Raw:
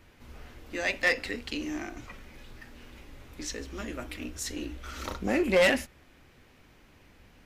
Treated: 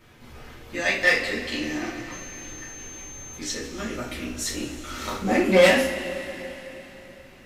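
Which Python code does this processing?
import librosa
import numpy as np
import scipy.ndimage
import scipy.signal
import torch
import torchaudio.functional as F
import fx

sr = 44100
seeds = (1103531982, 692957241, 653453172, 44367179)

y = fx.dmg_tone(x, sr, hz=6300.0, level_db=-51.0, at=(2.1, 3.36), fade=0.02)
y = fx.rev_double_slope(y, sr, seeds[0], early_s=0.36, late_s=3.8, knee_db=-18, drr_db=-5.5)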